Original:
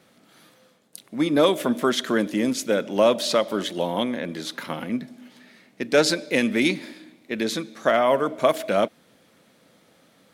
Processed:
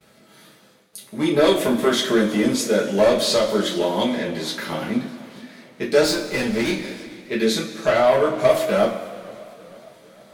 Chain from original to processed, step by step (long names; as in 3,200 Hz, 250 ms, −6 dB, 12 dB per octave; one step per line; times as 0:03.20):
noise gate with hold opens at −50 dBFS
in parallel at −11.5 dB: sine wavefolder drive 9 dB, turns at −6 dBFS
0:06.03–0:06.82: on the sum: tube saturation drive 15 dB, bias 0.55
coupled-rooms reverb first 0.27 s, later 2.2 s, from −18 dB, DRR −5 dB
feedback echo with a swinging delay time 456 ms, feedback 59%, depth 155 cents, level −22.5 dB
level −8 dB